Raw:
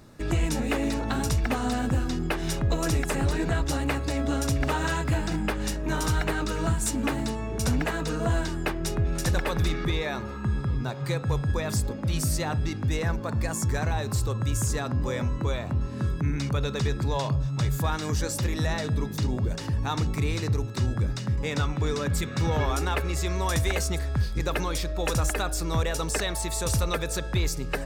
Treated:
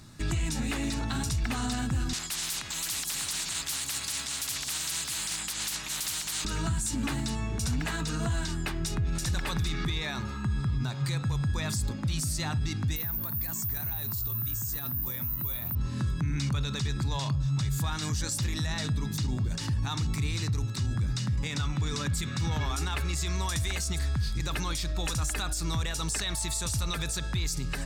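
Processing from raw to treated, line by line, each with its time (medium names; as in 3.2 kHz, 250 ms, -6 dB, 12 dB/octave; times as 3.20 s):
2.13–6.45 s: spectrum-flattening compressor 10:1
12.96–15.75 s: careless resampling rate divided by 3×, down filtered, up zero stuff
whole clip: graphic EQ 125/500/4000/8000 Hz +4/-11/+5/+6 dB; peak limiter -22 dBFS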